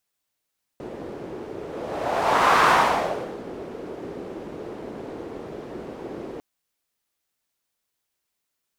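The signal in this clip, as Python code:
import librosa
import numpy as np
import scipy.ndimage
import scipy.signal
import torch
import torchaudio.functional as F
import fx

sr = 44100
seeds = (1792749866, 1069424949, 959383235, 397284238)

y = fx.whoosh(sr, seeds[0], length_s=5.6, peak_s=1.86, rise_s=1.16, fall_s=0.82, ends_hz=390.0, peak_hz=1100.0, q=2.1, swell_db=19.0)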